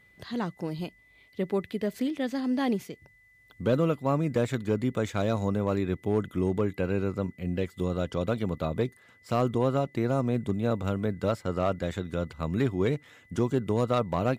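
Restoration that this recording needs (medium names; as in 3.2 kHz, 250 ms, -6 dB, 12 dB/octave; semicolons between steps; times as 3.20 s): clip repair -16 dBFS; band-stop 2 kHz, Q 30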